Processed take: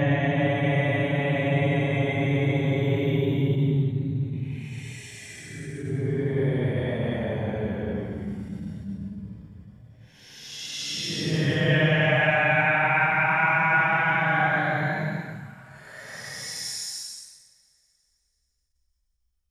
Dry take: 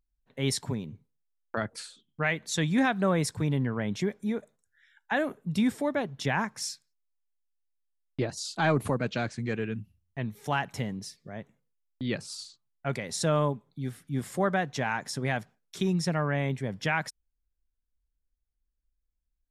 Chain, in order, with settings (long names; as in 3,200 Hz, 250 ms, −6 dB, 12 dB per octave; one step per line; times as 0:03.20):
extreme stretch with random phases 23×, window 0.05 s, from 0:16.36
coupled-rooms reverb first 0.44 s, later 3.1 s, from −18 dB, DRR 7.5 dB
level that may rise only so fast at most 130 dB per second
level +4 dB